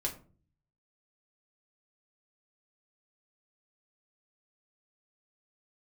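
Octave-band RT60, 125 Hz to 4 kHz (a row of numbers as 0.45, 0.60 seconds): 0.90, 0.65, 0.45, 0.35, 0.30, 0.20 seconds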